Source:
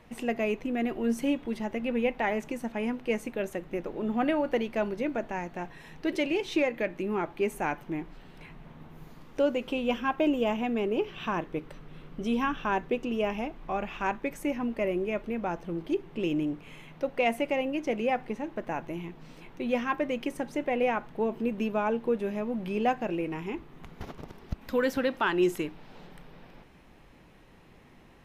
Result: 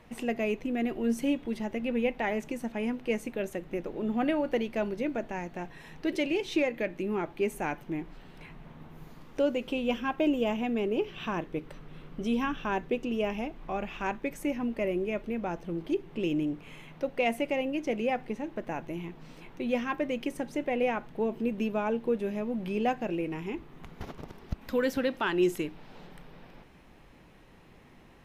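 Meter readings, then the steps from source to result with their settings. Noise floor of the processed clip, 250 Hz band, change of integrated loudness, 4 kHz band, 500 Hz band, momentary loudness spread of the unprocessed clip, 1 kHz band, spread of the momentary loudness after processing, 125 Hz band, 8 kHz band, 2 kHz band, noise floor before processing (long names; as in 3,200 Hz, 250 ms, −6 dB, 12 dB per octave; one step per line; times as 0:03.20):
−55 dBFS, −0.5 dB, −1.0 dB, −0.5 dB, −1.0 dB, 14 LU, −3.0 dB, 15 LU, 0.0 dB, 0.0 dB, −2.0 dB, −55 dBFS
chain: dynamic equaliser 1,100 Hz, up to −4 dB, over −43 dBFS, Q 0.92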